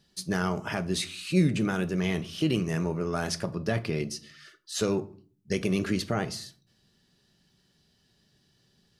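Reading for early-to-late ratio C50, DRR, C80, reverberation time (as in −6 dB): 18.5 dB, 10.5 dB, 23.0 dB, 0.45 s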